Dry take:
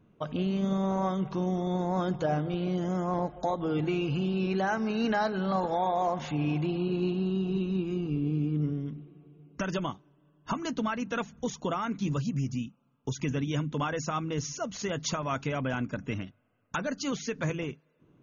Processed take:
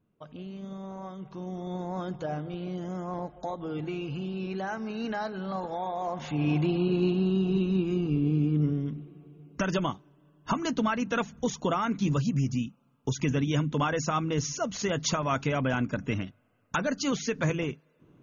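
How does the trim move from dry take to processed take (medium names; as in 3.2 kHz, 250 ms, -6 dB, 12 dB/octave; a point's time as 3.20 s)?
1.13 s -11.5 dB
1.73 s -5 dB
6.01 s -5 dB
6.53 s +3.5 dB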